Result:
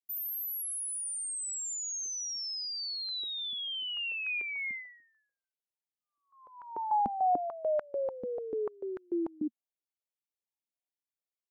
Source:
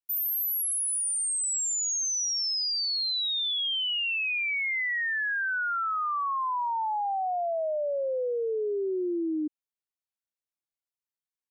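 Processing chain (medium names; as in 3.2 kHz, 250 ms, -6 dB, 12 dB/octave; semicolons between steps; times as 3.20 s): Chebyshev band-stop 920–2100 Hz, order 5; step-sequenced high-pass 6.8 Hz 230–1500 Hz; trim -7.5 dB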